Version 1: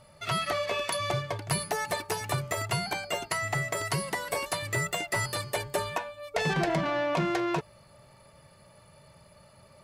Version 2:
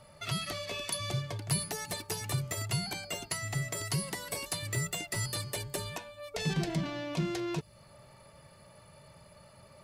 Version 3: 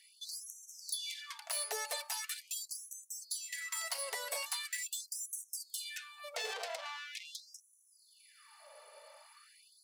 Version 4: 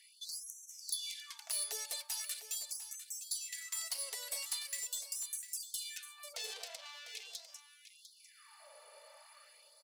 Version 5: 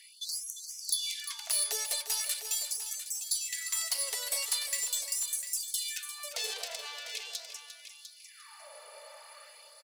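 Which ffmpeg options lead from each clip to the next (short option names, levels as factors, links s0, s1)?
-filter_complex "[0:a]acrossover=split=320|3000[s0][s1][s2];[s1]acompressor=threshold=0.00794:ratio=6[s3];[s0][s3][s2]amix=inputs=3:normalize=0"
-af "asoftclip=type=tanh:threshold=0.0282,afftfilt=real='re*gte(b*sr/1024,410*pow(5800/410,0.5+0.5*sin(2*PI*0.42*pts/sr)))':imag='im*gte(b*sr/1024,410*pow(5800/410,0.5+0.5*sin(2*PI*0.42*pts/sr)))':win_size=1024:overlap=0.75,volume=1.19"
-filter_complex "[0:a]acrossover=split=310|3000[s0][s1][s2];[s1]acompressor=threshold=0.00141:ratio=4[s3];[s0][s3][s2]amix=inputs=3:normalize=0,aecho=1:1:700:0.266,aeval=exprs='0.0596*(cos(1*acos(clip(val(0)/0.0596,-1,1)))-cos(1*PI/2))+0.00237*(cos(3*acos(clip(val(0)/0.0596,-1,1)))-cos(3*PI/2))+0.000473*(cos(6*acos(clip(val(0)/0.0596,-1,1)))-cos(6*PI/2))':c=same,volume=1.19"
-af "aecho=1:1:350|700:0.282|0.0479,volume=2.37"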